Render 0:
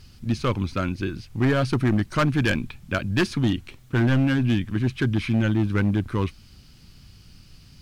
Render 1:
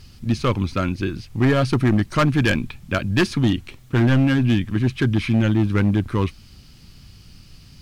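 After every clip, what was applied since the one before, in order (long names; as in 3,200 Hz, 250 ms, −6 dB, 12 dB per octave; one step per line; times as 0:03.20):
notch filter 1,500 Hz, Q 24
level +3.5 dB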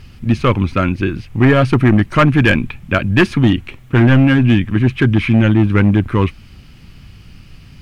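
high shelf with overshoot 3,400 Hz −7.5 dB, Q 1.5
level +6.5 dB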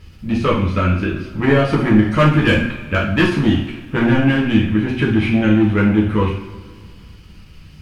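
coupled-rooms reverb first 0.54 s, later 2.3 s, from −18 dB, DRR −4.5 dB
every ending faded ahead of time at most 180 dB per second
level −7.5 dB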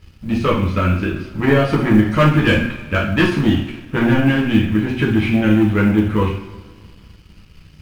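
mu-law and A-law mismatch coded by A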